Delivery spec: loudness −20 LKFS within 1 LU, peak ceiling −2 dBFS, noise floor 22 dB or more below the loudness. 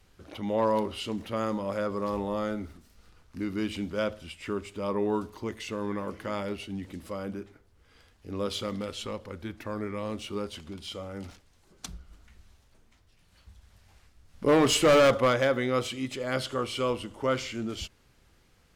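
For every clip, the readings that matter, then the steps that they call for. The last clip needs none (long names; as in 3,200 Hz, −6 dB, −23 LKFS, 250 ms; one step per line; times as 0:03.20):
share of clipped samples 0.6%; peaks flattened at −16.5 dBFS; integrated loudness −29.5 LKFS; sample peak −16.5 dBFS; target loudness −20.0 LKFS
→ clipped peaks rebuilt −16.5 dBFS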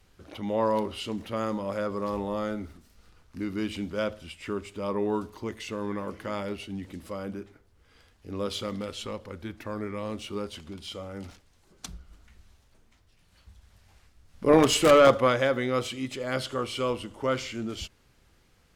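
share of clipped samples 0.0%; integrated loudness −28.5 LKFS; sample peak −7.5 dBFS; target loudness −20.0 LKFS
→ level +8.5 dB
brickwall limiter −2 dBFS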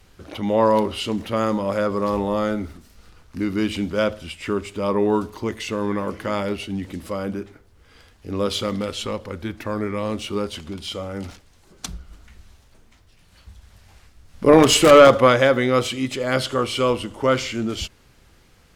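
integrated loudness −20.5 LKFS; sample peak −2.0 dBFS; background noise floor −54 dBFS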